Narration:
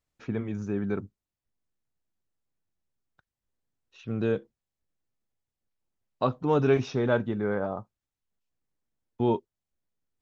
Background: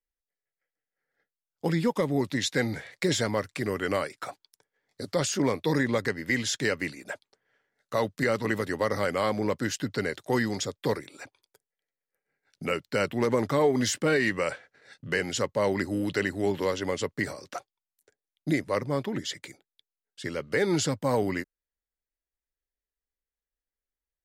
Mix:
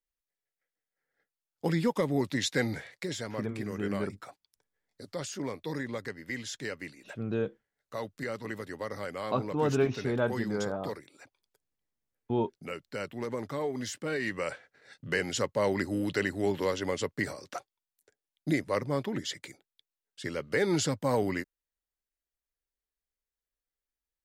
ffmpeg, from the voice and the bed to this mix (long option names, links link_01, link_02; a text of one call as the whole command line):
ffmpeg -i stem1.wav -i stem2.wav -filter_complex "[0:a]adelay=3100,volume=-4dB[link_01];[1:a]volume=6dB,afade=type=out:start_time=2.83:duration=0.23:silence=0.398107,afade=type=in:start_time=14.04:duration=0.8:silence=0.398107[link_02];[link_01][link_02]amix=inputs=2:normalize=0" out.wav